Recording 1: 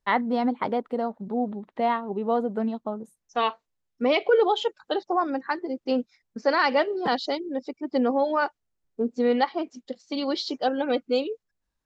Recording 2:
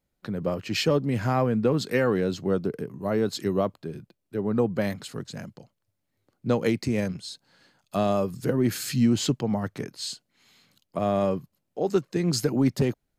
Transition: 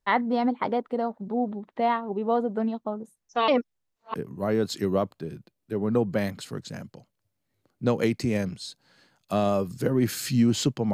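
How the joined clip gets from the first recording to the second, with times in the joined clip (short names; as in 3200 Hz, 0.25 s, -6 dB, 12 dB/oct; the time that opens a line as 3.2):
recording 1
3.48–4.14 reverse
4.14 switch to recording 2 from 2.77 s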